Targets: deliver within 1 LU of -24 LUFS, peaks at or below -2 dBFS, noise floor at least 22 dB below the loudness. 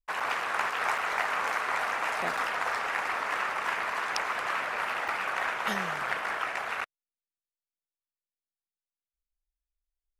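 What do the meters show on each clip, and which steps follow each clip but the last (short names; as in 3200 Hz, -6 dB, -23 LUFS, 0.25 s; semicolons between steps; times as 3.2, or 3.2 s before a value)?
dropouts 4; longest dropout 4.6 ms; loudness -30.0 LUFS; peak -8.5 dBFS; loudness target -24.0 LUFS
-> interpolate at 0.2/0.98/2.37/5.08, 4.6 ms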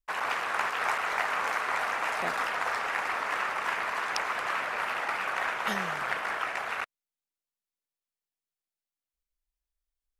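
dropouts 0; loudness -30.0 LUFS; peak -8.5 dBFS; loudness target -24.0 LUFS
-> gain +6 dB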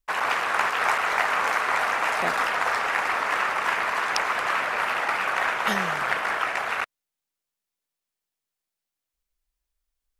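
loudness -24.0 LUFS; peak -2.5 dBFS; noise floor -87 dBFS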